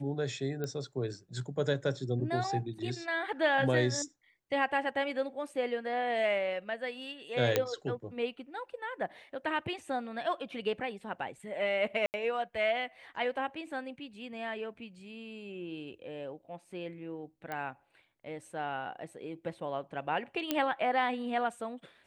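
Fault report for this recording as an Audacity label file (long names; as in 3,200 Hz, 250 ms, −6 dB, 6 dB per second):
0.640000	0.640000	click −23 dBFS
7.560000	7.560000	click −11 dBFS
12.060000	12.140000	drop-out 79 ms
17.520000	17.520000	click −24 dBFS
20.510000	20.510000	click −14 dBFS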